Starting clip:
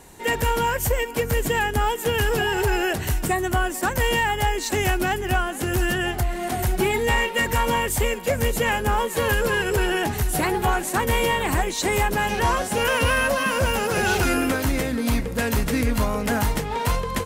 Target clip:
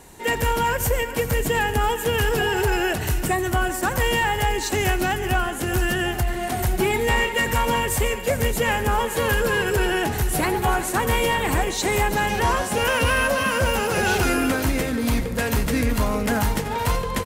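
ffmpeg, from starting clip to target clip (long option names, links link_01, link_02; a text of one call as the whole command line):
ffmpeg -i in.wav -af "aecho=1:1:87|145|376|385:0.15|0.126|0.15|0.133,acontrast=54,volume=-5.5dB" out.wav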